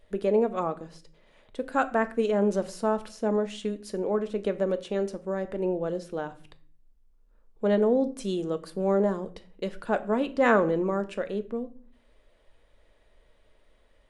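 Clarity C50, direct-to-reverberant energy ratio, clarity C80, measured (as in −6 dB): 17.5 dB, 9.0 dB, 21.0 dB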